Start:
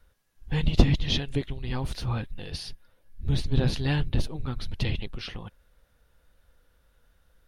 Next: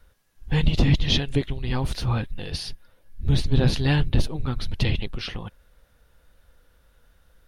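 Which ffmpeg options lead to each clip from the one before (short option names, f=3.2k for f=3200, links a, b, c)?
-af "alimiter=level_in=12dB:limit=-1dB:release=50:level=0:latency=1,volume=-7dB"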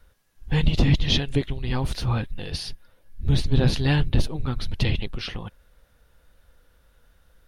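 -af anull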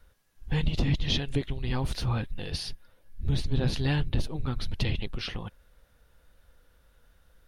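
-af "acompressor=threshold=-22dB:ratio=2,volume=-2.5dB"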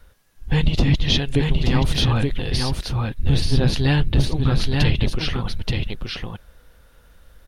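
-af "aecho=1:1:878:0.668,volume=8.5dB"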